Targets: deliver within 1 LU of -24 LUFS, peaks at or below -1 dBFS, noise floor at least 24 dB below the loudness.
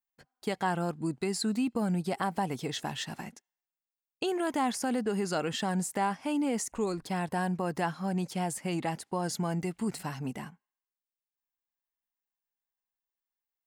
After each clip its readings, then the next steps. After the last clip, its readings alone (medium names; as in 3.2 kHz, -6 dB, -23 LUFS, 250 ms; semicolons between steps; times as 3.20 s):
loudness -32.0 LUFS; peak level -16.5 dBFS; loudness target -24.0 LUFS
-> trim +8 dB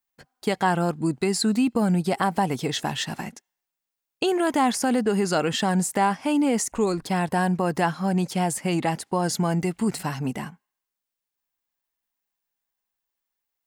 loudness -24.0 LUFS; peak level -8.5 dBFS; noise floor -86 dBFS